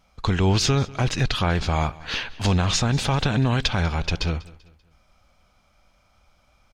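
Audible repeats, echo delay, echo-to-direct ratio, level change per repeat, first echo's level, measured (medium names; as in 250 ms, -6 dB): 2, 194 ms, -20.5 dB, -8.0 dB, -21.0 dB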